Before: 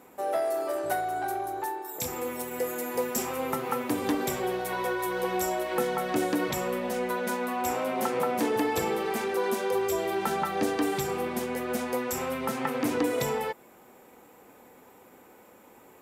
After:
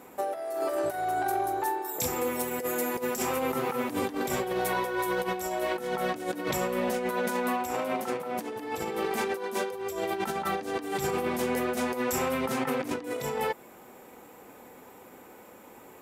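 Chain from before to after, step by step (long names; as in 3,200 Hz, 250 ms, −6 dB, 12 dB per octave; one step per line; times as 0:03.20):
compressor whose output falls as the input rises −31 dBFS, ratio −0.5
level +1.5 dB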